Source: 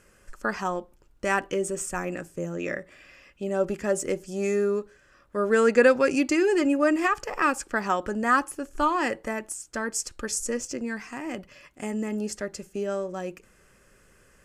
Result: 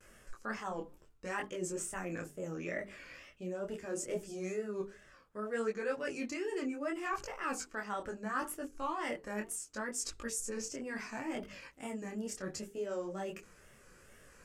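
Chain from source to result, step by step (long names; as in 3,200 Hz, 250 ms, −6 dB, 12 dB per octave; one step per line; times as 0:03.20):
tape wow and flutter 130 cents
reversed playback
downward compressor 4 to 1, threshold −36 dBFS, peak gain reduction 19 dB
reversed playback
mains-hum notches 50/100/150/200/250/300/350/400/450 Hz
micro pitch shift up and down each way 24 cents
level +3 dB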